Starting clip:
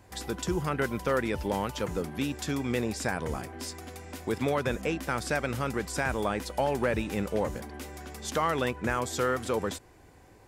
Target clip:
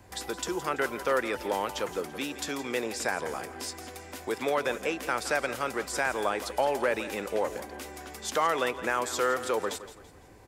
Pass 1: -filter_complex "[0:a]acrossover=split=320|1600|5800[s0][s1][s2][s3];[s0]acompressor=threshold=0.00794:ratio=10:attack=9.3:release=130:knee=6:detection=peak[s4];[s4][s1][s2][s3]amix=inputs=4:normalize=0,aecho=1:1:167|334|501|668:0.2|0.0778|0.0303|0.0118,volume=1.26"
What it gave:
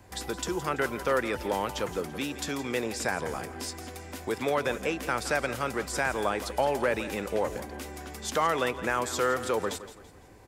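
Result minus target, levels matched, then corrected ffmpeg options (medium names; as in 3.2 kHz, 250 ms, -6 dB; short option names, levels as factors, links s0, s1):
compression: peak gain reduction -9 dB
-filter_complex "[0:a]acrossover=split=320|1600|5800[s0][s1][s2][s3];[s0]acompressor=threshold=0.00251:ratio=10:attack=9.3:release=130:knee=6:detection=peak[s4];[s4][s1][s2][s3]amix=inputs=4:normalize=0,aecho=1:1:167|334|501|668:0.2|0.0778|0.0303|0.0118,volume=1.26"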